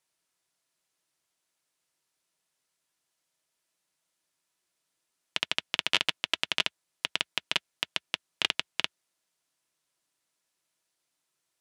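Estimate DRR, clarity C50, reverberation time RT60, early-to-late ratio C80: 12.0 dB, 60.0 dB, non-exponential decay, 60.0 dB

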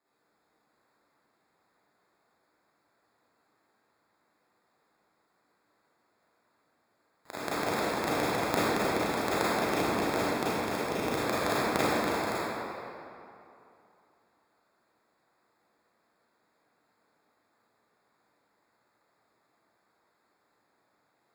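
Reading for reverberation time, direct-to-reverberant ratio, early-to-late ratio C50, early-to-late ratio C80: 2.8 s, −11.0 dB, −6.5 dB, −4.0 dB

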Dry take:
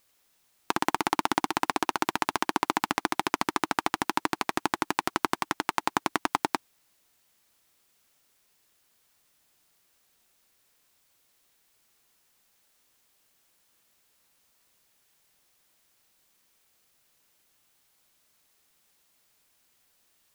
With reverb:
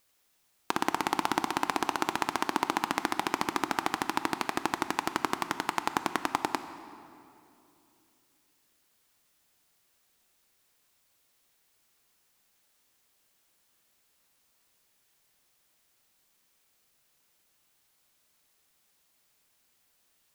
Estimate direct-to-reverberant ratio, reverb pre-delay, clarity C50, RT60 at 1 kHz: 10.5 dB, 16 ms, 11.5 dB, 2.6 s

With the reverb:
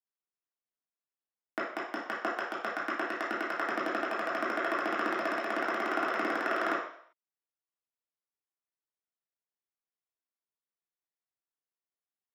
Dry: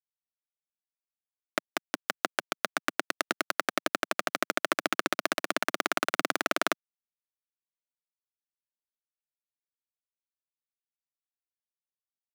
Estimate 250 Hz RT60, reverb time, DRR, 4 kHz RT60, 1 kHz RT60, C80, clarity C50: can't be measured, 0.60 s, −8.5 dB, 0.60 s, 0.60 s, 7.0 dB, 3.0 dB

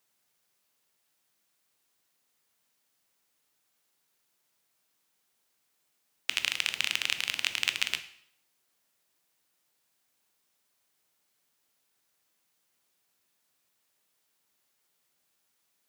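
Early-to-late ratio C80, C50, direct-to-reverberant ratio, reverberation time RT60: 16.0 dB, 13.5 dB, 10.0 dB, 0.65 s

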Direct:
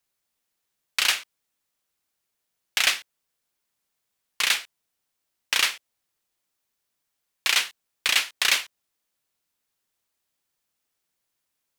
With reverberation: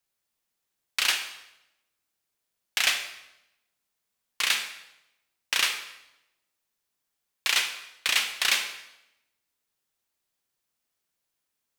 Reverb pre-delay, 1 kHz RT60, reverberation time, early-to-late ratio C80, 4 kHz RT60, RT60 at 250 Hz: 25 ms, 0.85 s, 0.90 s, 11.0 dB, 0.80 s, 1.0 s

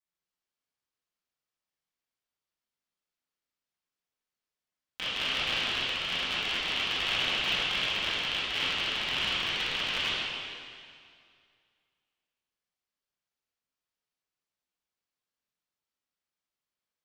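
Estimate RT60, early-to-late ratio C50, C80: 2.2 s, −3.5 dB, −1.5 dB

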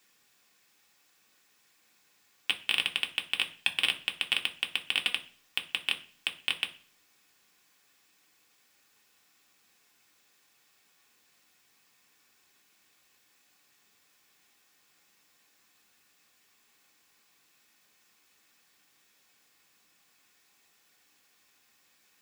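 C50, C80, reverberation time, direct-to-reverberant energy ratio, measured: 15.5 dB, 20.0 dB, 0.40 s, 3.0 dB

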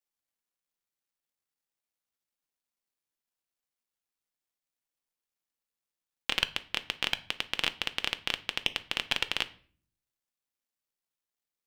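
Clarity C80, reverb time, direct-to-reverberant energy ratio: 22.5 dB, 0.45 s, 10.0 dB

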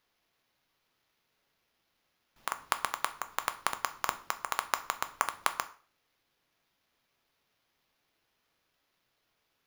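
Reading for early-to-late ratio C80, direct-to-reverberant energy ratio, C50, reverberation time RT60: 19.5 dB, 9.0 dB, 15.5 dB, 0.40 s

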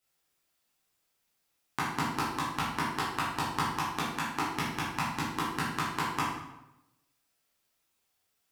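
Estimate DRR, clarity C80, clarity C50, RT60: −8.0 dB, 4.5 dB, 1.0 dB, 0.95 s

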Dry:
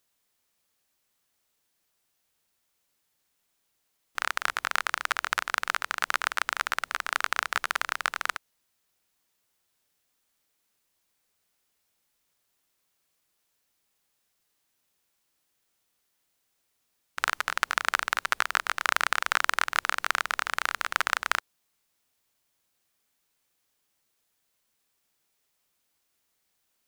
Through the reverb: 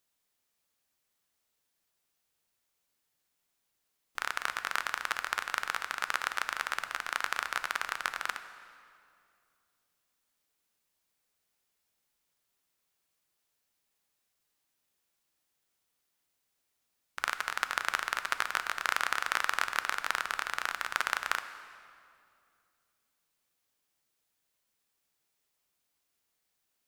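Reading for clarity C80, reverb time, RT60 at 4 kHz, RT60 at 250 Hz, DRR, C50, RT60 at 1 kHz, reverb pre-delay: 12.0 dB, 2.4 s, 1.8 s, 3.0 s, 10.0 dB, 11.0 dB, 2.3 s, 6 ms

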